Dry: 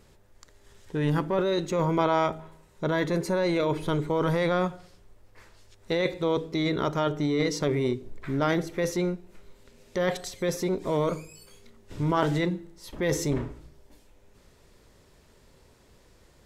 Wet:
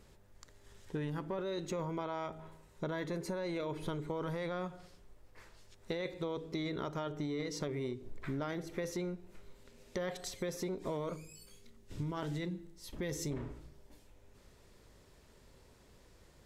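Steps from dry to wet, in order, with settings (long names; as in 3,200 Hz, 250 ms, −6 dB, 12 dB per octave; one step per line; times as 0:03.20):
0:11.16–0:13.31: parametric band 910 Hz −6.5 dB 2.8 octaves
downward compressor 12 to 1, threshold −30 dBFS, peak gain reduction 12.5 dB
mains hum 50 Hz, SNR 31 dB
level −4 dB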